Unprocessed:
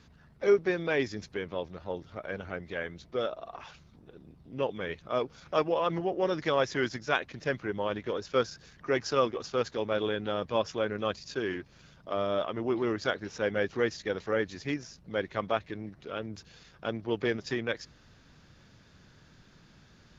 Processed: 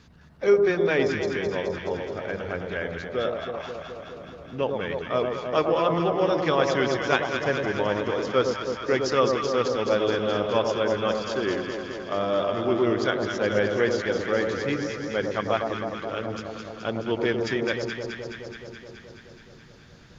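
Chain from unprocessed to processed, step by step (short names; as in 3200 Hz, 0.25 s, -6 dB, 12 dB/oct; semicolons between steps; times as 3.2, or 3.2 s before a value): echo with dull and thin repeats by turns 0.106 s, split 1100 Hz, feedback 85%, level -4 dB; gain +4 dB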